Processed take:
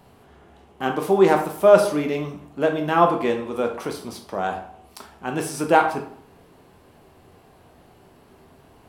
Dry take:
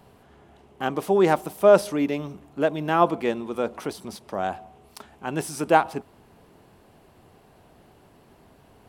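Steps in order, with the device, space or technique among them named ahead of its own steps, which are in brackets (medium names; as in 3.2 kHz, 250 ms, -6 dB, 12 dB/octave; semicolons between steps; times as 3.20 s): bathroom (reverberation RT60 0.60 s, pre-delay 8 ms, DRR 3 dB); trim +1 dB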